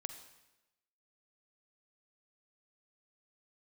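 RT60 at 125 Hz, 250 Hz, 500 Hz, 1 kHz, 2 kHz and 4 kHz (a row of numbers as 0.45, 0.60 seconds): 0.95, 1.0, 1.0, 1.0, 0.95, 0.90 seconds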